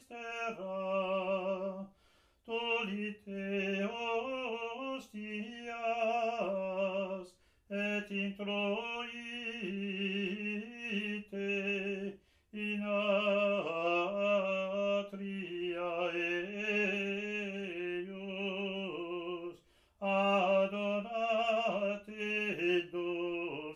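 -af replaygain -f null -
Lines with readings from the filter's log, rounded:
track_gain = +14.8 dB
track_peak = 0.080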